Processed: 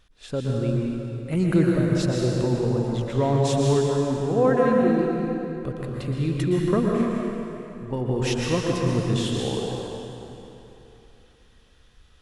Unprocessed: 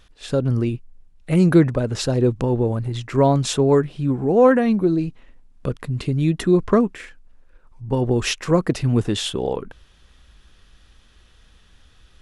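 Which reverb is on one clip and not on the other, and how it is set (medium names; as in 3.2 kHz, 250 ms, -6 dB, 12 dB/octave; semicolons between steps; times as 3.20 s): plate-style reverb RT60 3.1 s, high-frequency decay 0.8×, pre-delay 105 ms, DRR -2 dB; trim -7.5 dB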